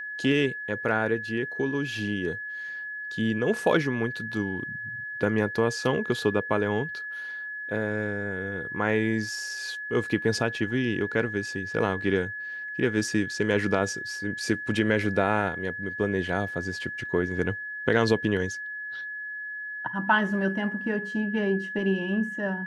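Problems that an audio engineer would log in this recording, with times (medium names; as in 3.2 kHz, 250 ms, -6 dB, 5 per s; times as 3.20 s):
whine 1.7 kHz -33 dBFS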